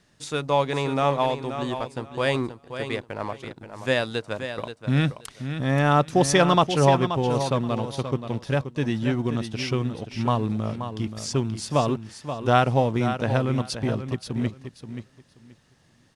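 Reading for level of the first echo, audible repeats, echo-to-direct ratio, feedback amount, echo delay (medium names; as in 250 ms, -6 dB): -9.5 dB, 2, -9.5 dB, 19%, 529 ms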